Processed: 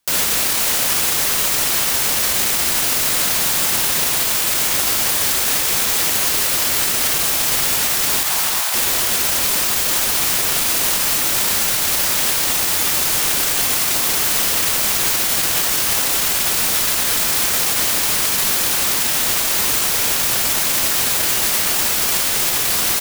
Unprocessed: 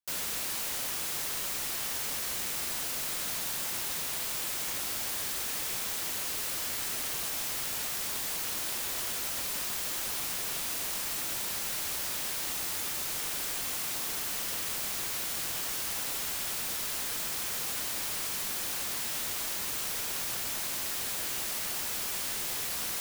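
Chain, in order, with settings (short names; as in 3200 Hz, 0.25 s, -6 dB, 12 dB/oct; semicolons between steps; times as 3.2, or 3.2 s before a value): 8.23–8.74 ladder high-pass 670 Hz, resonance 40%; on a send: echo 0.374 s -9.5 dB; on the sum: maximiser +29 dB; gain -7 dB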